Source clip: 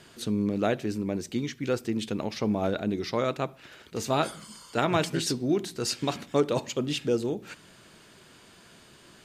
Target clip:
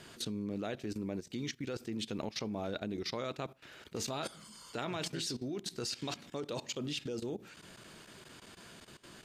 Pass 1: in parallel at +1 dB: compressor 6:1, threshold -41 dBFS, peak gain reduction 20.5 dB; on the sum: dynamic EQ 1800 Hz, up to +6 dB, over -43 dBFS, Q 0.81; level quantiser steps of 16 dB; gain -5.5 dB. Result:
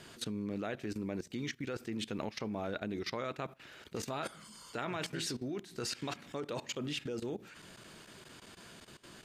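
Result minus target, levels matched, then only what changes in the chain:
2000 Hz band +3.0 dB
change: dynamic EQ 4400 Hz, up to +6 dB, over -43 dBFS, Q 0.81

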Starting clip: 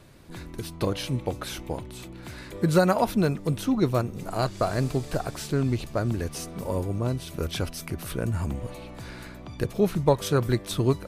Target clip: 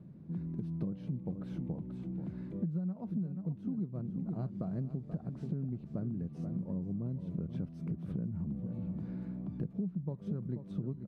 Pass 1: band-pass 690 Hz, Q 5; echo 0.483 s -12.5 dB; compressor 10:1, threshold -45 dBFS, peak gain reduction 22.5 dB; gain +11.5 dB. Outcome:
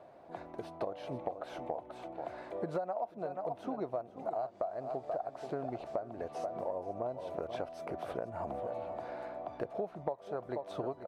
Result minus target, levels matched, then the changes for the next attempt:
500 Hz band +14.0 dB
change: band-pass 180 Hz, Q 5

